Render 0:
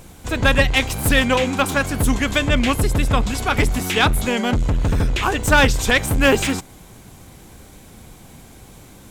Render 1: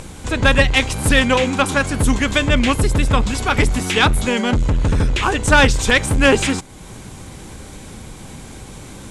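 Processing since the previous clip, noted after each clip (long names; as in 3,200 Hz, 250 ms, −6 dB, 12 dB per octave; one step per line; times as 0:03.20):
Butterworth low-pass 11,000 Hz 48 dB per octave
notch filter 700 Hz, Q 12
in parallel at −2 dB: upward compression, threshold −22 dBFS
on the sum: level −3 dB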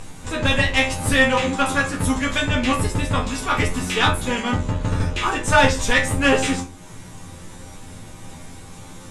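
tuned comb filter 88 Hz, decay 0.18 s, harmonics all, mix 90%
convolution reverb RT60 0.35 s, pre-delay 4 ms, DRR −0.5 dB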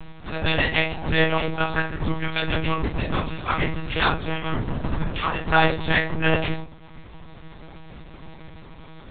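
one-pitch LPC vocoder at 8 kHz 160 Hz
level −3 dB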